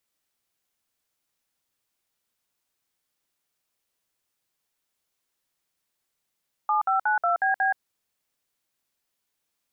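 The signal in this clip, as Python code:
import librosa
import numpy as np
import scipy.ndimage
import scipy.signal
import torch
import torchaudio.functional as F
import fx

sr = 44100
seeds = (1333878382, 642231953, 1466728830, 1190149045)

y = fx.dtmf(sr, digits='7592BB', tone_ms=125, gap_ms=57, level_db=-22.5)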